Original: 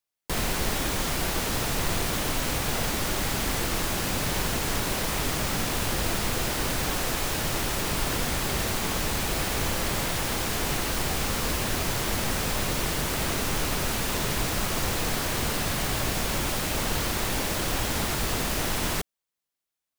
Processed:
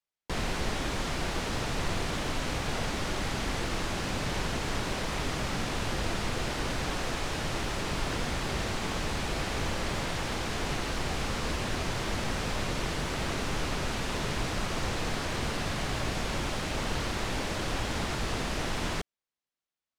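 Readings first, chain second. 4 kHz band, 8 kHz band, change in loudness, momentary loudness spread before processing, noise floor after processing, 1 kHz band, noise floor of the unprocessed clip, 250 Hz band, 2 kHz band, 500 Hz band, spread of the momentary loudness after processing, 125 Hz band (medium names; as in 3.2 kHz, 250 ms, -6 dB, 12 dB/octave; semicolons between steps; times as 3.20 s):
-5.0 dB, -10.0 dB, -5.5 dB, 0 LU, under -85 dBFS, -3.5 dB, under -85 dBFS, -3.0 dB, -3.5 dB, -3.0 dB, 1 LU, -3.0 dB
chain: distance through air 72 m; trim -3 dB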